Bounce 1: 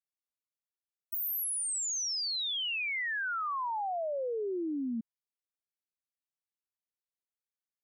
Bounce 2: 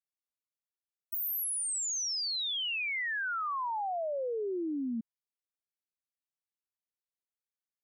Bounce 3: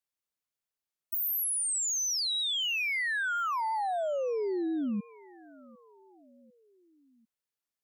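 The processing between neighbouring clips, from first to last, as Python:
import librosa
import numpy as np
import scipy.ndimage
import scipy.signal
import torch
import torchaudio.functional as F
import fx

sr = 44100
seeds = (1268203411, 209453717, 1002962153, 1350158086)

y1 = x
y2 = fx.echo_feedback(y1, sr, ms=748, feedback_pct=52, wet_db=-23)
y2 = fx.record_warp(y2, sr, rpm=45.0, depth_cents=160.0)
y2 = y2 * 10.0 ** (3.0 / 20.0)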